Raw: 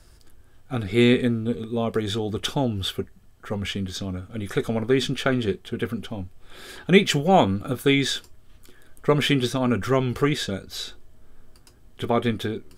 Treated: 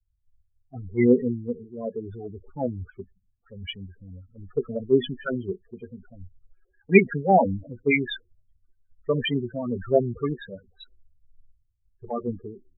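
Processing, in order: LFO low-pass sine 5.2 Hz 570–2600 Hz; loudest bins only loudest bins 8; three-band expander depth 100%; gain -6 dB

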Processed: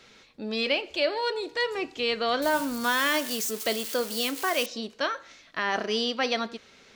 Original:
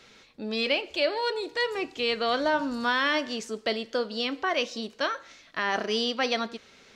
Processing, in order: 2.42–4.66 switching spikes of -24.5 dBFS

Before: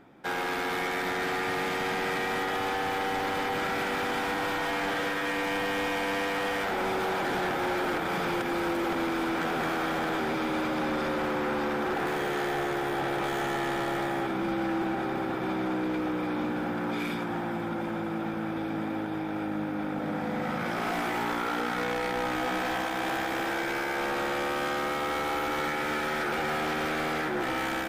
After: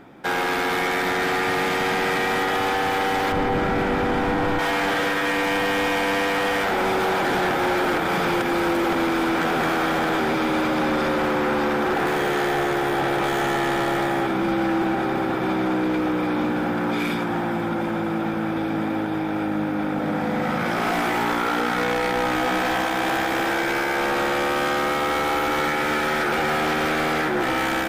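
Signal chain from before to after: 3.32–4.59 tilt -3 dB/oct; in parallel at -0.5 dB: limiter -28 dBFS, peak gain reduction 9.5 dB; on the sum: gain +3 dB

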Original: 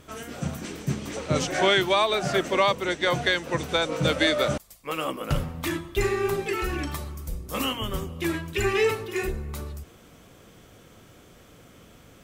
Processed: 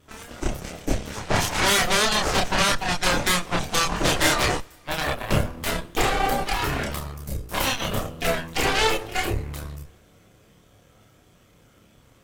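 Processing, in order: added harmonics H 7 -12 dB, 8 -6 dB, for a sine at -9 dBFS; chorus voices 4, 0.17 Hz, delay 29 ms, depth 1.1 ms; two-slope reverb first 0.35 s, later 2.8 s, from -18 dB, DRR 18.5 dB

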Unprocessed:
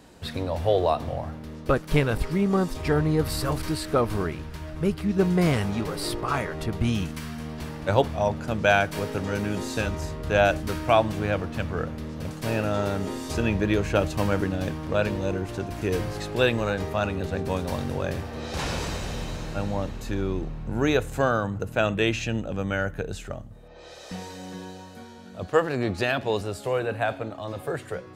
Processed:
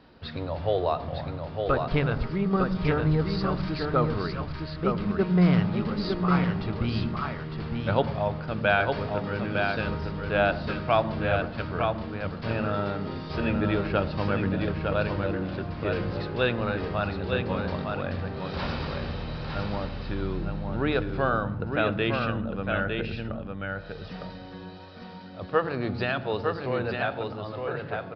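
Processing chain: bell 1300 Hz +5 dB 0.44 oct; echo 0.907 s -4.5 dB; on a send at -17.5 dB: reverb RT60 0.45 s, pre-delay 76 ms; on the sum: downsampling 11025 Hz; gain -4 dB

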